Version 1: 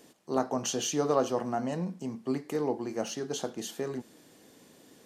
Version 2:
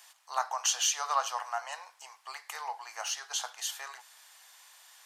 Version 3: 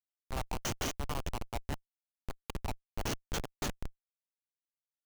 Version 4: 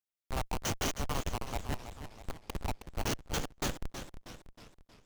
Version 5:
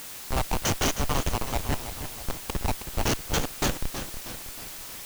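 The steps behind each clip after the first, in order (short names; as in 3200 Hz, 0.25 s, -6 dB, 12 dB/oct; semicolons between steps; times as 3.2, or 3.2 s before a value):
steep high-pass 850 Hz 36 dB/oct; gain +5.5 dB
bell 1600 Hz -13 dB 0.88 oct; compressor 6:1, threshold -36 dBFS, peak gain reduction 11.5 dB; Schmitt trigger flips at -34.5 dBFS; gain +11 dB
sample leveller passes 1; warbling echo 0.32 s, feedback 51%, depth 151 cents, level -10 dB
requantised 8-bit, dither triangular; gain +8 dB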